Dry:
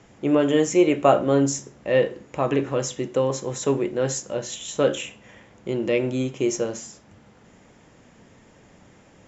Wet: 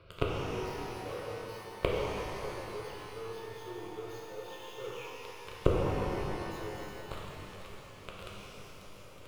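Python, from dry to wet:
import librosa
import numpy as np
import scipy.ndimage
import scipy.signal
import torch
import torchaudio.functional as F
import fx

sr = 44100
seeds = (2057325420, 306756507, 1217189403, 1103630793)

p1 = fx.pitch_glide(x, sr, semitones=-4.0, runs='ending unshifted')
p2 = fx.leveller(p1, sr, passes=5)
p3 = fx.gate_flip(p2, sr, shuts_db=-24.0, range_db=-42)
p4 = fx.fixed_phaser(p3, sr, hz=1200.0, stages=8)
p5 = fx.backlash(p4, sr, play_db=-33.0)
p6 = p4 + F.gain(torch.from_numpy(p5), -7.5).numpy()
p7 = fx.rev_shimmer(p6, sr, seeds[0], rt60_s=3.1, semitones=12, shimmer_db=-8, drr_db=-4.0)
y = F.gain(torch.from_numpy(p7), 8.5).numpy()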